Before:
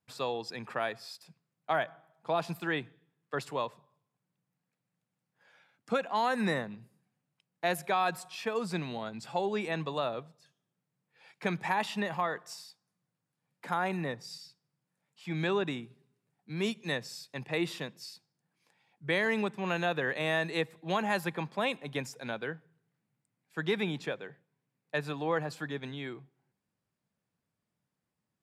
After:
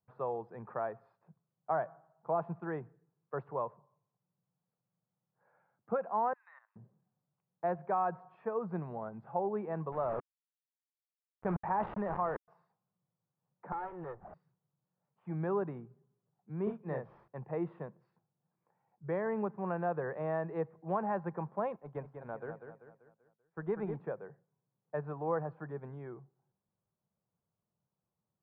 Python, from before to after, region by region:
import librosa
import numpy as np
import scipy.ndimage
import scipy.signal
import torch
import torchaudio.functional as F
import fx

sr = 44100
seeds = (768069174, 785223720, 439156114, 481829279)

y = fx.chain(x, sr, fx.bessel_highpass(hz=1900.0, order=6),
    fx.level_steps(step_db=14), at=(6.33, 6.76))
y = fx.chain(y, sr, fx.quant_dither(seeds[0], bits=6, dither='none'),
    fx.sustainer(db_per_s=27.0), at=(9.92, 12.48))
y = fx.chain(y, sr, fx.lower_of_two(delay_ms=2.3),
    fx.low_shelf(hz=420.0, db=-6.0),
    fx.resample_bad(factor=8, down='none', up='hold'), at=(13.72, 14.34))
y = fx.chain(y, sr, fx.doubler(ms=38.0, db=-4.0),
    fx.resample_bad(factor=4, down='none', up='hold'), at=(16.63, 17.28))
y = fx.chain(y, sr, fx.law_mismatch(coded='A'),
    fx.echo_feedback(ms=194, feedback_pct=45, wet_db=-7.5), at=(21.76, 23.95))
y = scipy.signal.sosfilt(scipy.signal.butter(4, 1200.0, 'lowpass', fs=sr, output='sos'), y)
y = fx.peak_eq(y, sr, hz=270.0, db=-10.5, octaves=0.36)
y = y * librosa.db_to_amplitude(-1.5)